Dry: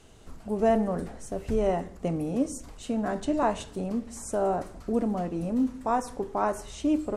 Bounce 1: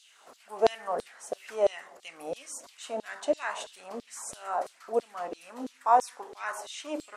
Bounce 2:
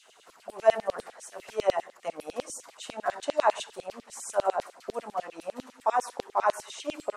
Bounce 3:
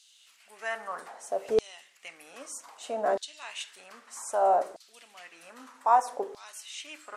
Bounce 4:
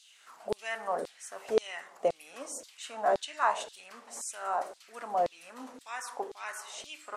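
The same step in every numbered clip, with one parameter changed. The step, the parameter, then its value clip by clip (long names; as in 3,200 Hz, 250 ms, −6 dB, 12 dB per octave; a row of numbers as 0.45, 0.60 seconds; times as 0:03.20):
auto-filter high-pass, speed: 3, 10, 0.63, 1.9 Hertz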